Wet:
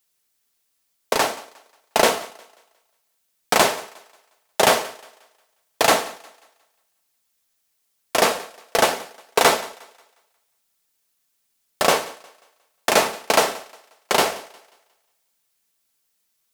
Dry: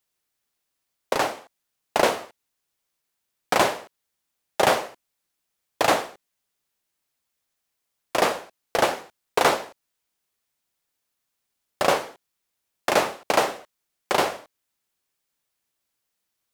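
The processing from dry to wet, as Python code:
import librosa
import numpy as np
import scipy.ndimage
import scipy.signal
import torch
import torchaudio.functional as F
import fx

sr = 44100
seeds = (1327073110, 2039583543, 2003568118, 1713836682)

p1 = fx.high_shelf(x, sr, hz=3500.0, db=7.0)
p2 = p1 + 0.3 * np.pad(p1, (int(4.5 * sr / 1000.0), 0))[:len(p1)]
p3 = p2 + fx.echo_thinned(p2, sr, ms=179, feedback_pct=37, hz=260.0, wet_db=-21, dry=0)
y = p3 * 10.0 ** (2.0 / 20.0)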